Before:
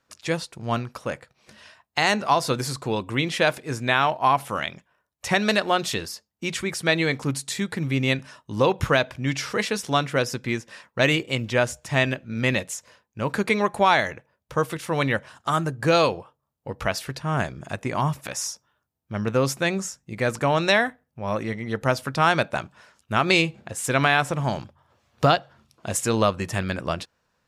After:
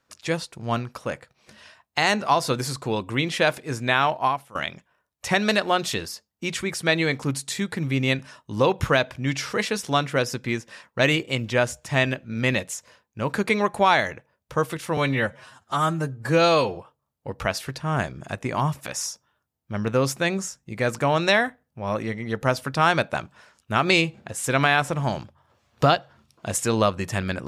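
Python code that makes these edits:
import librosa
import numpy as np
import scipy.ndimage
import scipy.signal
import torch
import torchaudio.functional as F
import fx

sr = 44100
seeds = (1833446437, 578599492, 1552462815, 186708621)

y = fx.edit(x, sr, fx.fade_out_to(start_s=4.22, length_s=0.33, curve='qua', floor_db=-18.0),
    fx.stretch_span(start_s=14.97, length_s=1.19, factor=1.5), tone=tone)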